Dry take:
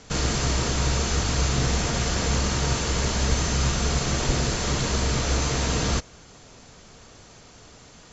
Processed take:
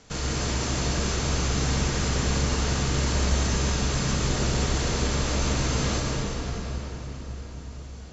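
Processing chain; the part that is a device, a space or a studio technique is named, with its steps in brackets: cathedral (reverb RT60 5.0 s, pre-delay 82 ms, DRR -2 dB); gain -5.5 dB

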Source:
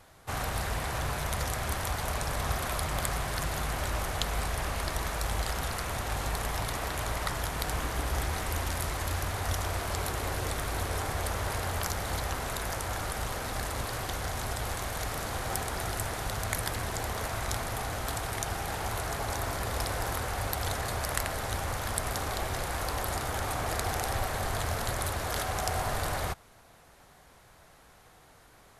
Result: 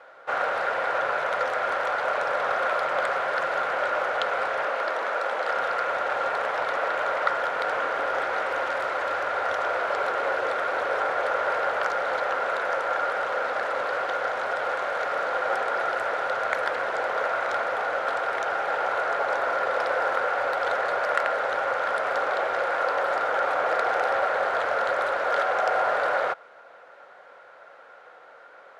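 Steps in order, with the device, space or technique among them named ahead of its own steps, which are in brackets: tin-can telephone (BPF 600–2200 Hz; small resonant body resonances 530/1400 Hz, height 12 dB, ringing for 25 ms); 4.65–5.49 elliptic high-pass 210 Hz; gain +7.5 dB

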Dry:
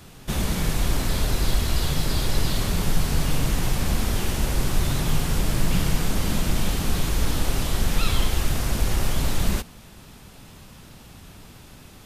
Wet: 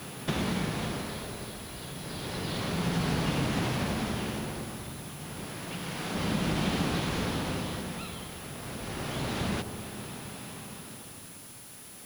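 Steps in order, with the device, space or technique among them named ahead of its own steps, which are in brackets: medium wave at night (BPF 140–4100 Hz; compressor, threshold -33 dBFS, peak gain reduction 11.5 dB; tremolo 0.3 Hz, depth 79%; whine 10000 Hz -56 dBFS; white noise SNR 16 dB); 5.44–6.15 low shelf 320 Hz -7.5 dB; dark delay 65 ms, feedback 83%, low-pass 890 Hz, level -10 dB; gain +6.5 dB

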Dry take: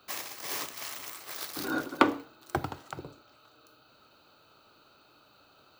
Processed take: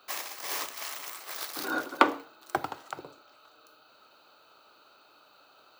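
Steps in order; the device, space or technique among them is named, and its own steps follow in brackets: filter by subtraction (in parallel: LPF 750 Hz 12 dB/oct + phase invert); on the sum: gain +1 dB

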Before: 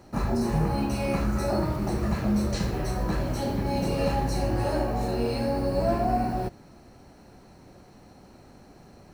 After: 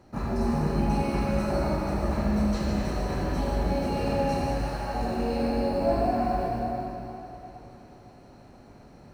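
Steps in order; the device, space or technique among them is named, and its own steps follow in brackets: 4.44–4.94 HPF 950 Hz 12 dB/oct; swimming-pool hall (reverb RT60 3.6 s, pre-delay 66 ms, DRR -3 dB; high shelf 5300 Hz -7 dB); gain -4 dB

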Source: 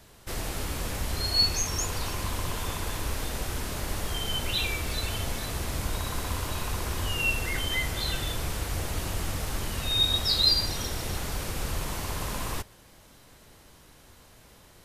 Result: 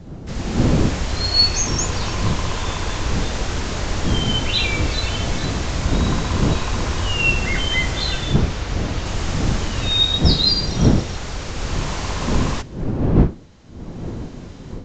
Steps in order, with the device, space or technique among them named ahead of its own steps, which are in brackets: 8.34–9.06 LPF 6500 Hz; smartphone video outdoors (wind noise 210 Hz -28 dBFS; AGC gain up to 10 dB; gain -1 dB; AAC 64 kbps 16000 Hz)

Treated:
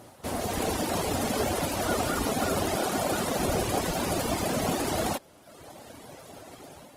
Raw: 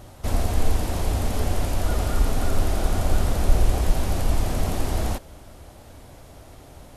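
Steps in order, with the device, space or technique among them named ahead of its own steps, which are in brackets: 2.75–3.4 HPF 140 Hz 6 dB/oct; reverb removal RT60 1.1 s; video call (HPF 180 Hz 12 dB/oct; AGC gain up to 5.5 dB; Opus 20 kbps 48000 Hz)

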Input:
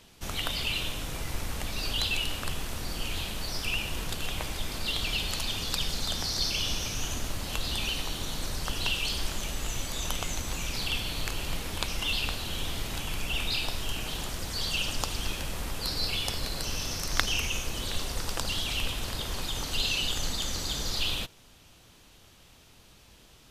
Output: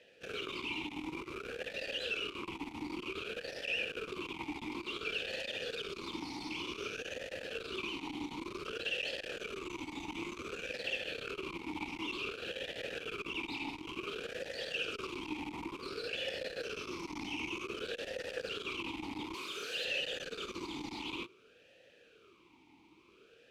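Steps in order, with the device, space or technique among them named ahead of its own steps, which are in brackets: 19.34–19.85 tilt +3.5 dB/oct; talk box (tube stage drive 32 dB, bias 0.8; vowel sweep e-u 0.55 Hz); gain +14 dB

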